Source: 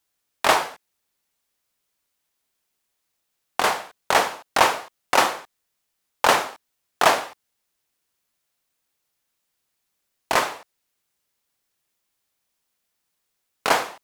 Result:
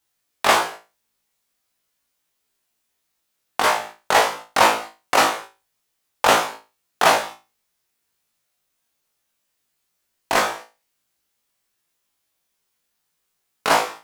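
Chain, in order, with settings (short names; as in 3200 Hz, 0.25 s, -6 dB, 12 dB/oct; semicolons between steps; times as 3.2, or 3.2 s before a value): flutter echo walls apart 3.1 m, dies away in 0.28 s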